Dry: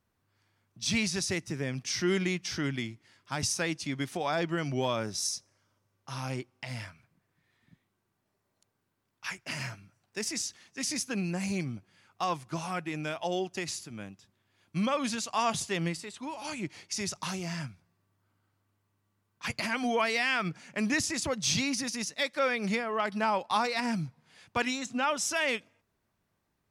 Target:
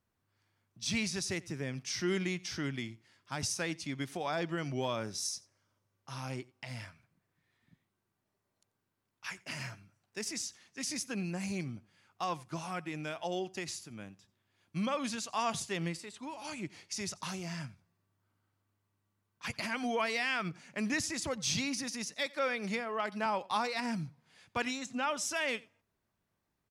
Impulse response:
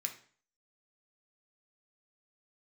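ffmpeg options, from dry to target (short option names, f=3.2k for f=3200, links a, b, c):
-filter_complex "[0:a]asettb=1/sr,asplit=3[a][b][c];[a]atrim=end=22.264[d];[b]atrim=start=22.26:end=23.26,asetpts=PTS-STARTPTS,afade=t=in:d=0.004:c=qsin,afade=t=out:st=0.996:d=0.004:c=qsin,highpass=170[e];[c]atrim=start=23.256[f];[d][e]acrossfade=d=0.004:c1=hsin:c2=qsin[g];[g][f]acrossfade=d=0.004:c1=qsin:c2=hsin,aecho=1:1:89:0.0708,volume=-4.5dB"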